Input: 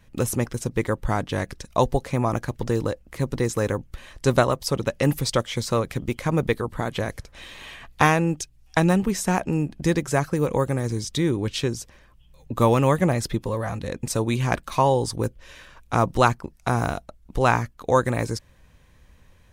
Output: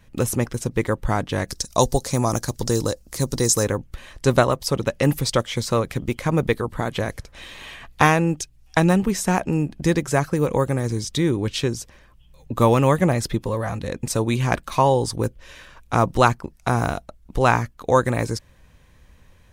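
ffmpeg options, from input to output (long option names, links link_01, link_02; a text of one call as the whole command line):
ffmpeg -i in.wav -filter_complex "[0:a]asplit=3[link_01][link_02][link_03];[link_01]afade=type=out:start_time=1.47:duration=0.02[link_04];[link_02]highshelf=frequency=3700:width_type=q:width=1.5:gain=11.5,afade=type=in:start_time=1.47:duration=0.02,afade=type=out:start_time=3.63:duration=0.02[link_05];[link_03]afade=type=in:start_time=3.63:duration=0.02[link_06];[link_04][link_05][link_06]amix=inputs=3:normalize=0,volume=2dB" out.wav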